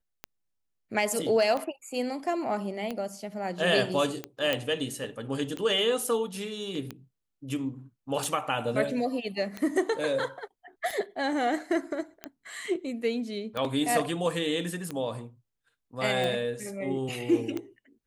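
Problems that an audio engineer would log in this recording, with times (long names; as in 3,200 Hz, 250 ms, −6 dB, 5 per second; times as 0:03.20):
scratch tick 45 rpm −19 dBFS
0:04.53: click −13 dBFS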